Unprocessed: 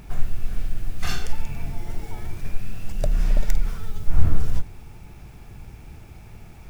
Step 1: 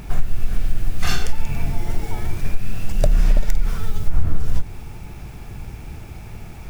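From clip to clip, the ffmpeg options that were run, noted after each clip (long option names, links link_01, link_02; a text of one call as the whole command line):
ffmpeg -i in.wav -af "acompressor=threshold=-16dB:ratio=6,volume=7.5dB" out.wav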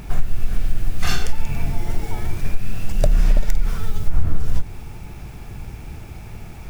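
ffmpeg -i in.wav -af anull out.wav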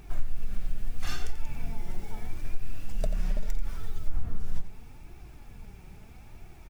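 ffmpeg -i in.wav -filter_complex "[0:a]flanger=delay=2.5:depth=3:regen=41:speed=0.77:shape=triangular,asplit=2[link_01][link_02];[link_02]adelay=87.46,volume=-12dB,highshelf=frequency=4000:gain=-1.97[link_03];[link_01][link_03]amix=inputs=2:normalize=0,volume=-9dB" out.wav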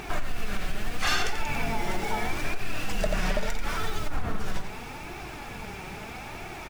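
ffmpeg -i in.wav -filter_complex "[0:a]alimiter=limit=-19dB:level=0:latency=1:release=45,asplit=2[link_01][link_02];[link_02]highpass=frequency=720:poles=1,volume=23dB,asoftclip=type=tanh:threshold=-19dB[link_03];[link_01][link_03]amix=inputs=2:normalize=0,lowpass=frequency=3500:poles=1,volume=-6dB,volume=4.5dB" out.wav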